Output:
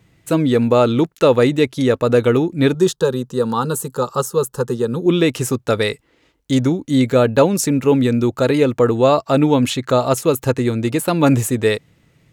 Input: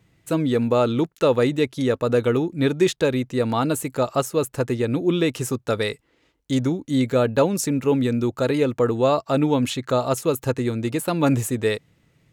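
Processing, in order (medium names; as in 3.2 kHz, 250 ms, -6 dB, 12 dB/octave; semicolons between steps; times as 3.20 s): 2.74–5.06 s: static phaser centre 440 Hz, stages 8; trim +5.5 dB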